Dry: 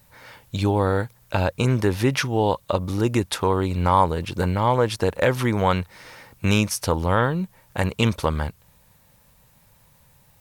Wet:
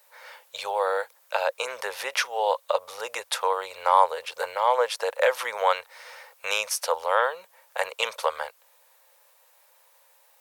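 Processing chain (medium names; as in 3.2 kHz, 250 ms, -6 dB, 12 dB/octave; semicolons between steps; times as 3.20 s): elliptic high-pass 500 Hz, stop band 40 dB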